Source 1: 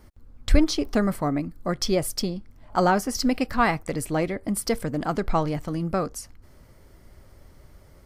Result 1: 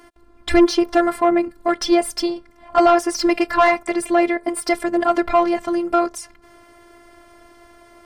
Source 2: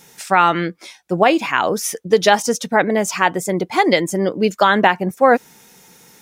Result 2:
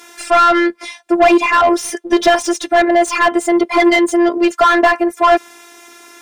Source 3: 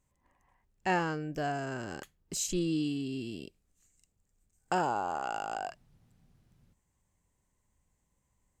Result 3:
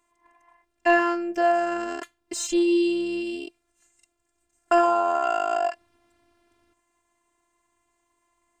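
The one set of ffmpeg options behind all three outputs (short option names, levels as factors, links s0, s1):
-filter_complex "[0:a]afftfilt=real='hypot(re,im)*cos(PI*b)':imag='0':win_size=512:overlap=0.75,equalizer=f=8900:t=o:w=0.21:g=7,asplit=2[s0][s1];[s1]highpass=f=720:p=1,volume=17.8,asoftclip=type=tanh:threshold=0.944[s2];[s0][s2]amix=inputs=2:normalize=0,lowpass=f=1700:p=1,volume=0.501"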